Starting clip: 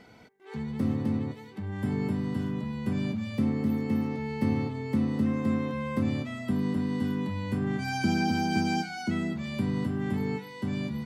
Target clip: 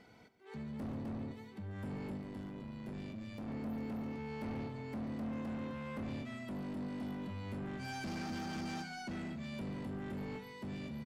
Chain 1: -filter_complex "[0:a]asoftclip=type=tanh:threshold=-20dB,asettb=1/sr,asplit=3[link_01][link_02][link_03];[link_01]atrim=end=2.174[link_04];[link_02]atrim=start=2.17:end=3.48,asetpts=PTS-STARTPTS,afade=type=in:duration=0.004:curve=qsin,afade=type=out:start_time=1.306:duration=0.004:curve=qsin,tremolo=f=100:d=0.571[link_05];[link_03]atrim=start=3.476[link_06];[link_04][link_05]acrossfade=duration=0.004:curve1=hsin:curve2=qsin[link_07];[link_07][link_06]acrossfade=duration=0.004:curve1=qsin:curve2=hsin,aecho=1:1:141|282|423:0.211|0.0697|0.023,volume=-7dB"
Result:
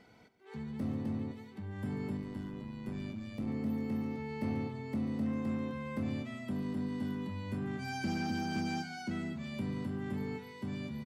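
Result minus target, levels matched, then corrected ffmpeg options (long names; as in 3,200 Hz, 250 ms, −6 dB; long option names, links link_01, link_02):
soft clipping: distortion −12 dB
-filter_complex "[0:a]asoftclip=type=tanh:threshold=-31.5dB,asettb=1/sr,asplit=3[link_01][link_02][link_03];[link_01]atrim=end=2.174[link_04];[link_02]atrim=start=2.17:end=3.48,asetpts=PTS-STARTPTS,afade=type=in:duration=0.004:curve=qsin,afade=type=out:start_time=1.306:duration=0.004:curve=qsin,tremolo=f=100:d=0.571[link_05];[link_03]atrim=start=3.476[link_06];[link_04][link_05]acrossfade=duration=0.004:curve1=hsin:curve2=qsin[link_07];[link_07][link_06]acrossfade=duration=0.004:curve1=qsin:curve2=hsin,aecho=1:1:141|282|423:0.211|0.0697|0.023,volume=-7dB"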